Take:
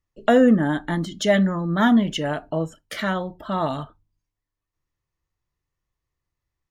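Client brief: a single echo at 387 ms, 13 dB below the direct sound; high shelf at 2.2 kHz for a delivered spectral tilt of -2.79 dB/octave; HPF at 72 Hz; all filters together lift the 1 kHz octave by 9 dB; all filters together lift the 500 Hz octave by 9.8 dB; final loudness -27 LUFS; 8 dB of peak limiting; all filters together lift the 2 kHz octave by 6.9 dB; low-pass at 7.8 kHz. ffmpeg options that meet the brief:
-af "highpass=72,lowpass=7800,equalizer=f=500:t=o:g=9,equalizer=f=1000:t=o:g=8,equalizer=f=2000:t=o:g=7.5,highshelf=f=2200:g=-5.5,alimiter=limit=0.531:level=0:latency=1,aecho=1:1:387:0.224,volume=0.335"

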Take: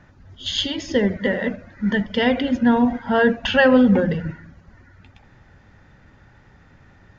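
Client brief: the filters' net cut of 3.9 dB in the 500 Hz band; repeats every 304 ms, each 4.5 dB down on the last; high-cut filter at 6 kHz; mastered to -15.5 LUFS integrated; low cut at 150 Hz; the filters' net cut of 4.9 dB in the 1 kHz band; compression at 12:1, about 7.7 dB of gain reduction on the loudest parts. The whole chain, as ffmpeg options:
-af "highpass=150,lowpass=6000,equalizer=f=500:t=o:g=-3,equalizer=f=1000:t=o:g=-5.5,acompressor=threshold=0.1:ratio=12,aecho=1:1:304|608|912|1216|1520|1824|2128|2432|2736:0.596|0.357|0.214|0.129|0.0772|0.0463|0.0278|0.0167|0.01,volume=2.82"

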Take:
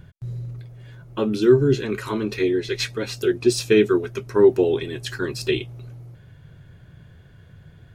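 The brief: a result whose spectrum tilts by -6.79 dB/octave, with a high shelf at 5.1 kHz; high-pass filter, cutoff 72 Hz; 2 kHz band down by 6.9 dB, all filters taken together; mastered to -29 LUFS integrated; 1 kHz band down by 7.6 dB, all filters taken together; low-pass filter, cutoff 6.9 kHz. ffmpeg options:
-af "highpass=72,lowpass=6900,equalizer=f=1000:t=o:g=-7.5,equalizer=f=2000:t=o:g=-5.5,highshelf=f=5100:g=-8,volume=0.473"

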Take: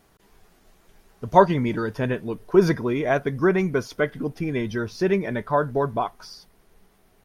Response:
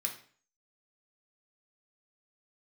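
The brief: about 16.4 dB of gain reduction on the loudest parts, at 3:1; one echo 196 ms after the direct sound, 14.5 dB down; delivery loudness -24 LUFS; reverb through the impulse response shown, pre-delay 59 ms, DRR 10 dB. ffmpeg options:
-filter_complex "[0:a]acompressor=threshold=0.0251:ratio=3,aecho=1:1:196:0.188,asplit=2[s0][s1];[1:a]atrim=start_sample=2205,adelay=59[s2];[s1][s2]afir=irnorm=-1:irlink=0,volume=0.266[s3];[s0][s3]amix=inputs=2:normalize=0,volume=2.99"

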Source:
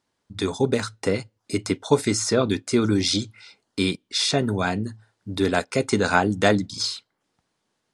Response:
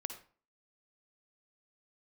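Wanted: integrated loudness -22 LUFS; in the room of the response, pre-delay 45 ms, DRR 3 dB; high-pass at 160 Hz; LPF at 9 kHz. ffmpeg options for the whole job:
-filter_complex "[0:a]highpass=160,lowpass=9000,asplit=2[s0][s1];[1:a]atrim=start_sample=2205,adelay=45[s2];[s1][s2]afir=irnorm=-1:irlink=0,volume=0.794[s3];[s0][s3]amix=inputs=2:normalize=0"

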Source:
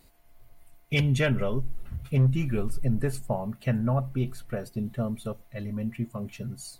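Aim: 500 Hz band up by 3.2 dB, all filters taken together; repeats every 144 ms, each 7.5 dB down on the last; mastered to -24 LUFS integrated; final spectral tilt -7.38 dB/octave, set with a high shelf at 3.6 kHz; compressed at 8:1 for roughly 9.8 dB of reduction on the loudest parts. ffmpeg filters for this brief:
-af "equalizer=f=500:t=o:g=4,highshelf=f=3600:g=-3,acompressor=threshold=0.0398:ratio=8,aecho=1:1:144|288|432|576|720:0.422|0.177|0.0744|0.0312|0.0131,volume=2.99"

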